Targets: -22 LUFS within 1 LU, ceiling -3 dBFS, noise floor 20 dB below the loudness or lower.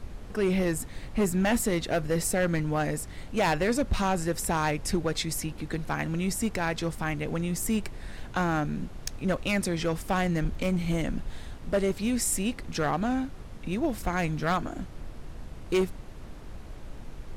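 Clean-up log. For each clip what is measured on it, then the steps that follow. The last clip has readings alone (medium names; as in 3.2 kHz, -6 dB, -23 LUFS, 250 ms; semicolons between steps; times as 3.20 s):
clipped samples 1.7%; clipping level -19.5 dBFS; noise floor -43 dBFS; noise floor target -49 dBFS; loudness -29.0 LUFS; peak level -19.5 dBFS; loudness target -22.0 LUFS
-> clip repair -19.5 dBFS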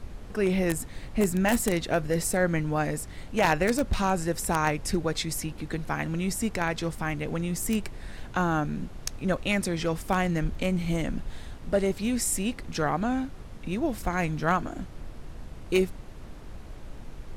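clipped samples 0.0%; noise floor -43 dBFS; noise floor target -48 dBFS
-> noise print and reduce 6 dB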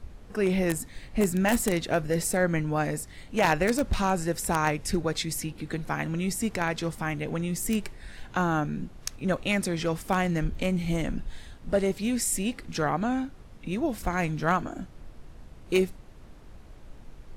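noise floor -48 dBFS; loudness -28.0 LUFS; peak level -10.5 dBFS; loudness target -22.0 LUFS
-> trim +6 dB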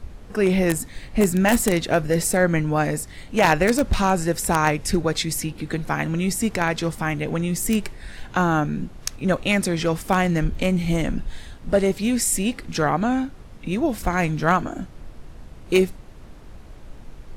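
loudness -22.0 LUFS; peak level -4.5 dBFS; noise floor -42 dBFS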